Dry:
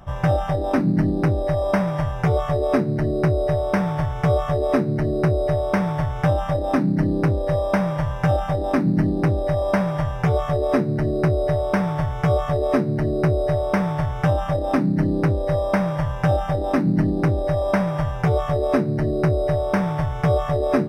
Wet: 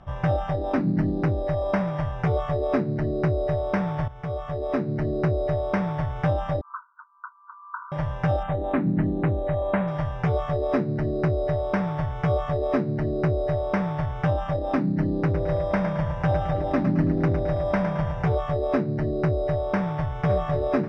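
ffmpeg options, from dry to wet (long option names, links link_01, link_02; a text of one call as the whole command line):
ffmpeg -i in.wav -filter_complex "[0:a]asettb=1/sr,asplit=3[link_01][link_02][link_03];[link_01]atrim=end=6.614[link_04];[link_02]atrim=start=6.61:end=7.92,asetpts=PTS-STARTPTS,afade=type=in:duration=0.004:curve=qsin,afade=type=out:start_time=1.306:duration=0.004:curve=qsin,asuperpass=centerf=1200:order=20:qfactor=2[link_05];[link_03]atrim=start=7.916[link_06];[link_04][link_05]acrossfade=duration=0.004:curve1=hsin:curve2=qsin[link_07];[link_07][link_06]acrossfade=duration=0.004:curve1=qsin:curve2=hsin,asettb=1/sr,asplit=3[link_08][link_09][link_10];[link_08]atrim=end=8.434[link_11];[link_09]atrim=start=8.43:end=9.88,asetpts=PTS-STARTPTS,afade=type=in:duration=0.004:curve=qsin,afade=type=out:start_time=1.446:duration=0.004:curve=qsin,asuperstop=centerf=5500:order=4:qfactor=1.2[link_12];[link_10]atrim=start=9.876[link_13];[link_11][link_12]acrossfade=duration=0.004:curve1=hsin:curve2=qsin[link_14];[link_14][link_13]acrossfade=duration=0.004:curve1=qsin:curve2=hsin,asplit=3[link_15][link_16][link_17];[link_15]afade=type=out:start_time=15.33:duration=0.02[link_18];[link_16]aecho=1:1:109|218|327|436|545:0.398|0.183|0.0842|0.0388|0.0178,afade=type=in:start_time=15.33:duration=0.02,afade=type=out:start_time=18.33:duration=0.02[link_19];[link_17]afade=type=in:start_time=18.33:duration=0.02[link_20];[link_18][link_19][link_20]amix=inputs=3:normalize=0,asplit=2[link_21][link_22];[link_22]afade=type=in:start_time=19.75:duration=0.01,afade=type=out:start_time=20.15:duration=0.01,aecho=0:1:540|1080|1620|2160|2700|3240|3780:0.354813|0.212888|0.127733|0.0766397|0.0459838|0.0275903|0.0165542[link_23];[link_21][link_23]amix=inputs=2:normalize=0,asplit=2[link_24][link_25];[link_24]atrim=end=4.08,asetpts=PTS-STARTPTS,afade=type=out:start_time=4.076:duration=0.004:curve=hsin:silence=0.237137[link_26];[link_25]atrim=start=4.08,asetpts=PTS-STARTPTS,afade=type=in:duration=0.95:silence=0.237137[link_27];[link_26][link_27]concat=n=2:v=0:a=1,lowpass=4300,volume=-4dB" out.wav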